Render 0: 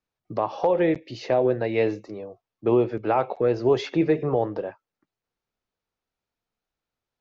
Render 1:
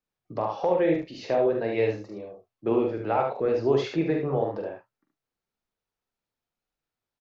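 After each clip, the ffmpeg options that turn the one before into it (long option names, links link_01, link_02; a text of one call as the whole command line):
ffmpeg -i in.wav -af "flanger=delay=3.7:depth=4.8:regen=-64:speed=1.8:shape=triangular,bandreject=frequency=60:width_type=h:width=6,bandreject=frequency=120:width_type=h:width=6,aecho=1:1:44|73|108:0.501|0.531|0.126" out.wav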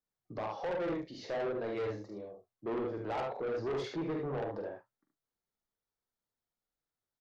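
ffmpeg -i in.wav -af "equalizer=frequency=2600:width=5.7:gain=-12,asoftclip=type=tanh:threshold=-26dB,volume=-5.5dB" out.wav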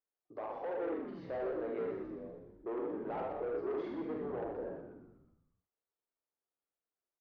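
ffmpeg -i in.wav -filter_complex "[0:a]lowpass=1900,lowshelf=frequency=250:width_type=q:width=1.5:gain=-12.5,asplit=2[link_01][link_02];[link_02]asplit=7[link_03][link_04][link_05][link_06][link_07][link_08][link_09];[link_03]adelay=123,afreqshift=-68,volume=-6dB[link_10];[link_04]adelay=246,afreqshift=-136,volume=-11.2dB[link_11];[link_05]adelay=369,afreqshift=-204,volume=-16.4dB[link_12];[link_06]adelay=492,afreqshift=-272,volume=-21.6dB[link_13];[link_07]adelay=615,afreqshift=-340,volume=-26.8dB[link_14];[link_08]adelay=738,afreqshift=-408,volume=-32dB[link_15];[link_09]adelay=861,afreqshift=-476,volume=-37.2dB[link_16];[link_10][link_11][link_12][link_13][link_14][link_15][link_16]amix=inputs=7:normalize=0[link_17];[link_01][link_17]amix=inputs=2:normalize=0,volume=-5dB" out.wav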